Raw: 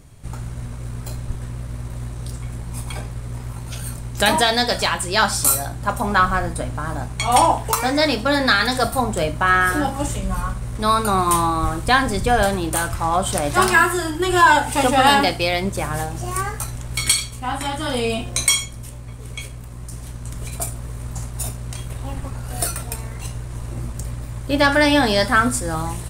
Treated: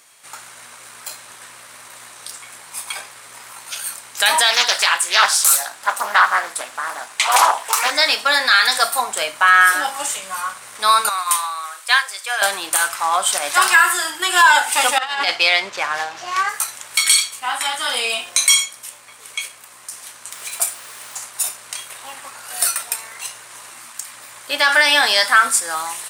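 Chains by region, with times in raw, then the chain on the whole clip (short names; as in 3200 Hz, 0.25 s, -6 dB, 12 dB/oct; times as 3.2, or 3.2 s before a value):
4.5–7.91 HPF 230 Hz 6 dB/oct + Doppler distortion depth 0.47 ms
11.09–12.42 HPF 560 Hz 24 dB/oct + bell 800 Hz -7 dB 0.7 oct + upward expander, over -28 dBFS
14.98–16.49 median filter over 5 samples + LPF 7000 Hz + negative-ratio compressor -19 dBFS, ratio -0.5
20.31–21.17 HPF 58 Hz + added noise pink -45 dBFS
23.7–24.14 HPF 140 Hz + bell 470 Hz -11.5 dB 0.82 oct
whole clip: HPF 1200 Hz 12 dB/oct; maximiser +9 dB; gain -1 dB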